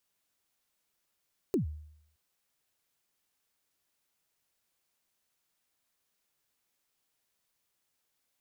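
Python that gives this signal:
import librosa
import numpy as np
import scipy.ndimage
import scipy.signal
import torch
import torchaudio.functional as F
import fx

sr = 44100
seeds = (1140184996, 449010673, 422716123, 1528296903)

y = fx.drum_kick(sr, seeds[0], length_s=0.62, level_db=-22.5, start_hz=430.0, end_hz=76.0, sweep_ms=118.0, decay_s=0.72, click=True)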